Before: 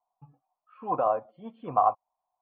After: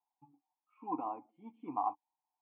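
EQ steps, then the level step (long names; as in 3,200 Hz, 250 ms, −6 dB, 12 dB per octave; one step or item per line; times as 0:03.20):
formant filter u
+4.0 dB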